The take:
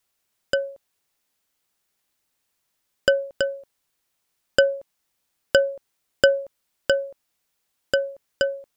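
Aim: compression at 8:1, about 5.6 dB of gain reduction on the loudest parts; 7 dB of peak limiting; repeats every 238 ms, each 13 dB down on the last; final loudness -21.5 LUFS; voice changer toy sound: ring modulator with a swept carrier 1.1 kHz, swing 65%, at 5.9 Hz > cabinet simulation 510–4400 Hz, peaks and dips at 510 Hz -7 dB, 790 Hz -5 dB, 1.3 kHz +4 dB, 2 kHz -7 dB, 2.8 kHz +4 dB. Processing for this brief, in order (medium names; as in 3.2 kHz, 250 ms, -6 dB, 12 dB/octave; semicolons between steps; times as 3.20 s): compression 8:1, threshold -17 dBFS; peak limiter -11.5 dBFS; feedback delay 238 ms, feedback 22%, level -13 dB; ring modulator with a swept carrier 1.1 kHz, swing 65%, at 5.9 Hz; cabinet simulation 510–4400 Hz, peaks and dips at 510 Hz -7 dB, 790 Hz -5 dB, 1.3 kHz +4 dB, 2 kHz -7 dB, 2.8 kHz +4 dB; trim +12.5 dB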